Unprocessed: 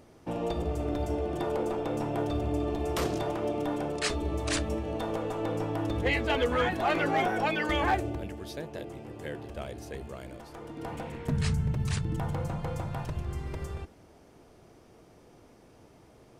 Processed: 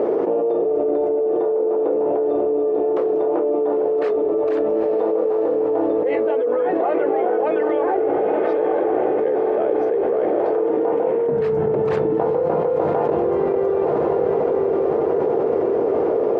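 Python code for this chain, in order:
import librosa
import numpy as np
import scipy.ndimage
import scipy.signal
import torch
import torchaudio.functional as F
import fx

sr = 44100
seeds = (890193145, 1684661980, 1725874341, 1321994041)

y = fx.ladder_bandpass(x, sr, hz=480.0, resonance_pct=65)
y = fx.echo_diffused(y, sr, ms=904, feedback_pct=47, wet_db=-10)
y = fx.env_flatten(y, sr, amount_pct=100)
y = F.gain(torch.from_numpy(y), 8.0).numpy()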